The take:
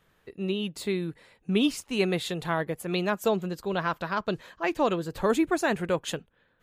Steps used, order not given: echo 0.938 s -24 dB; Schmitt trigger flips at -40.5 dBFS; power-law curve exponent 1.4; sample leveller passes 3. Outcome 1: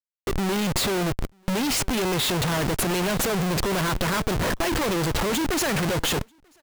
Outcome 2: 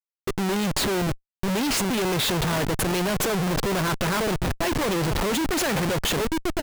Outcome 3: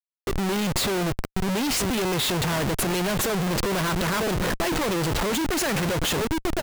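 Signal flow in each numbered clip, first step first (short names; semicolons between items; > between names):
sample leveller > Schmitt trigger > echo > power-law curve; sample leveller > power-law curve > echo > Schmitt trigger; sample leveller > echo > Schmitt trigger > power-law curve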